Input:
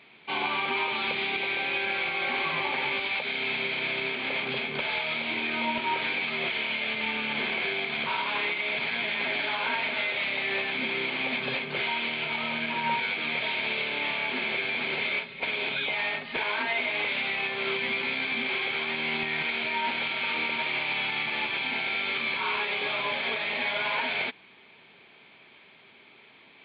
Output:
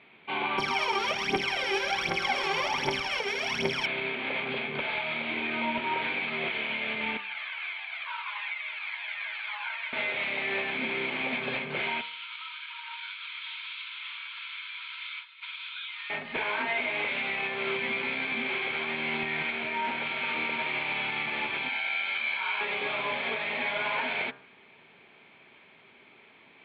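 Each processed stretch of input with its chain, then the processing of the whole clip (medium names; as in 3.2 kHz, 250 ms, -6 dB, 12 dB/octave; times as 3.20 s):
0.58–3.86 s: sorted samples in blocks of 8 samples + phaser 1.3 Hz, delay 2.6 ms, feedback 76%
7.17–9.93 s: high-pass 960 Hz 24 dB/octave + Shepard-style flanger falling 1.7 Hz
12.01–16.10 s: rippled Chebyshev high-pass 950 Hz, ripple 9 dB + treble shelf 3.7 kHz +8.5 dB + flange 1.6 Hz, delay 1.2 ms, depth 7.6 ms, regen -60%
19.51–20.06 s: treble shelf 4.2 kHz -6 dB + hard clipper -21.5 dBFS
21.69–22.61 s: high-pass 1.2 kHz 6 dB/octave + comb 1.3 ms, depth 46%
whole clip: low-pass 2.8 kHz 12 dB/octave; de-hum 67.12 Hz, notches 28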